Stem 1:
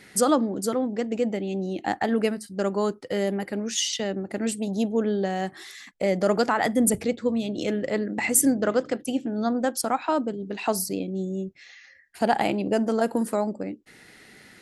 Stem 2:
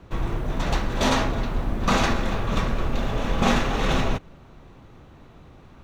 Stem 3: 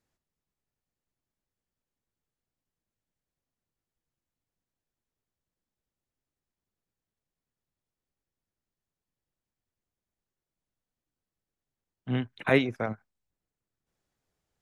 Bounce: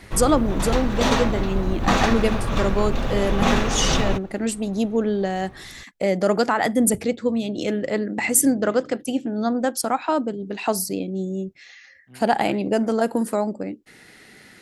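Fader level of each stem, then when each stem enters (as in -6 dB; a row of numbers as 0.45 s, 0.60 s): +2.5 dB, +1.0 dB, -20.0 dB; 0.00 s, 0.00 s, 0.00 s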